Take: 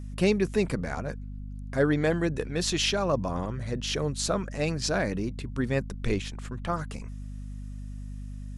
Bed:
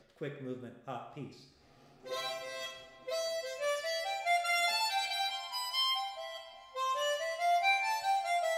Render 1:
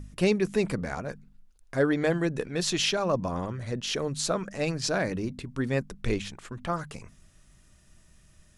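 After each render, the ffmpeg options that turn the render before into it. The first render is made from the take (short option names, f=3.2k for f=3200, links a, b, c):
-af "bandreject=f=50:t=h:w=4,bandreject=f=100:t=h:w=4,bandreject=f=150:t=h:w=4,bandreject=f=200:t=h:w=4,bandreject=f=250:t=h:w=4"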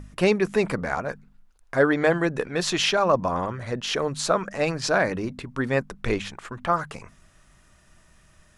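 -af "equalizer=f=1.1k:t=o:w=2.5:g=9.5"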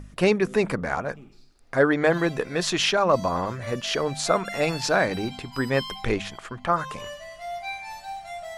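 -filter_complex "[1:a]volume=-4.5dB[a];[0:a][a]amix=inputs=2:normalize=0"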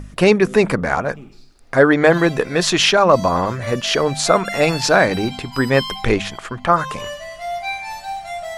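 -af "volume=8dB,alimiter=limit=-1dB:level=0:latency=1"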